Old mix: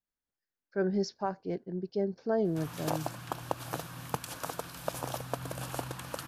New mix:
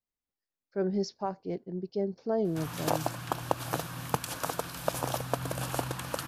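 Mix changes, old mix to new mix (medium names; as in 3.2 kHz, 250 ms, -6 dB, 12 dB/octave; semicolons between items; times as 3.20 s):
speech: add peaking EQ 1.6 kHz -8 dB 0.34 oct; background +4.5 dB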